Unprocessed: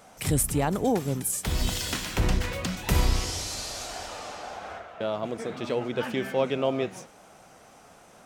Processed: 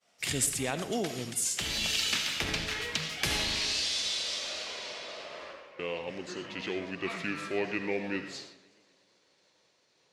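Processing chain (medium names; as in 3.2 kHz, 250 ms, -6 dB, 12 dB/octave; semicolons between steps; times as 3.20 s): gliding tape speed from 93% -> 70%; frequency weighting D; expander -40 dBFS; reverberation RT60 0.45 s, pre-delay 40 ms, DRR 9 dB; modulated delay 125 ms, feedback 65%, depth 178 cents, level -22.5 dB; trim -7 dB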